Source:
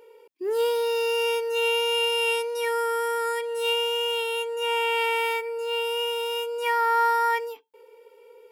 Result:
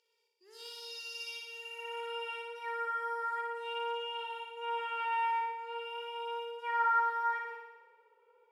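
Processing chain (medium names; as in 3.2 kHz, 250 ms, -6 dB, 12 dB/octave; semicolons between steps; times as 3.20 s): spectral replace 1.55–2.10 s, 1.1–5.9 kHz both; band-pass sweep 5 kHz -> 1.2 kHz, 1.23–2.16 s; on a send: flutter echo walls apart 9.9 m, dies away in 1.1 s; on the sum: trim -5.5 dB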